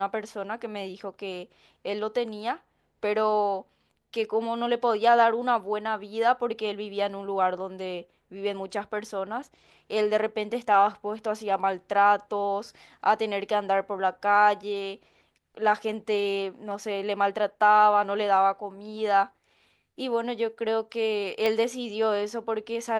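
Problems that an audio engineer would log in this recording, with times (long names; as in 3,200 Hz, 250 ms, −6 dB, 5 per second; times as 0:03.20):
0:21.46: click −14 dBFS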